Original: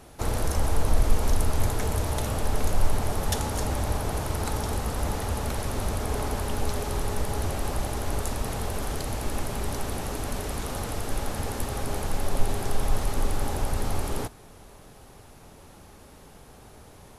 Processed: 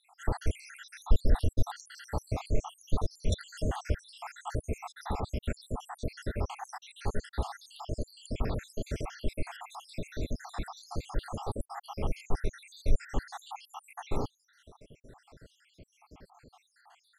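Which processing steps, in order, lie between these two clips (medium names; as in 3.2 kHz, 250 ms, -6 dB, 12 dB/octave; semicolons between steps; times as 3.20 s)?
random holes in the spectrogram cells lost 79%; distance through air 76 m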